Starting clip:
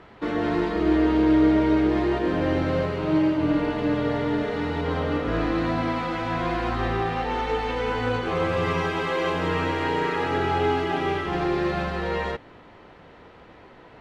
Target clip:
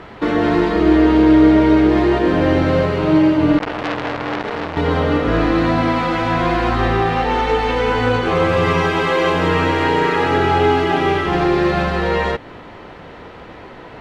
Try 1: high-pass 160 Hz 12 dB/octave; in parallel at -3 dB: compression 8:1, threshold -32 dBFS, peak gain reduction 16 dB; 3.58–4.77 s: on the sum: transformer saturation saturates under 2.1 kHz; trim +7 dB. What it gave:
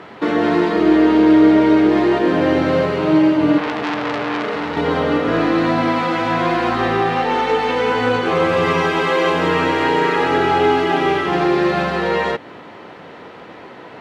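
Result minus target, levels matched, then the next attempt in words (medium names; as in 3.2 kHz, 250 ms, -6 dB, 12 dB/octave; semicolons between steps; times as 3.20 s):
125 Hz band -5.5 dB
in parallel at -3 dB: compression 8:1, threshold -32 dBFS, peak gain reduction 16.5 dB; 3.58–4.77 s: on the sum: transformer saturation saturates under 2.1 kHz; trim +7 dB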